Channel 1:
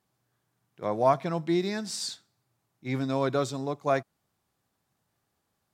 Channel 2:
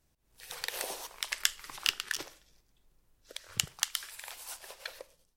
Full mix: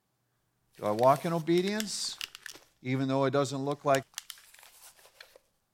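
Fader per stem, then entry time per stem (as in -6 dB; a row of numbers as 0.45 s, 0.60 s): -0.5 dB, -9.5 dB; 0.00 s, 0.35 s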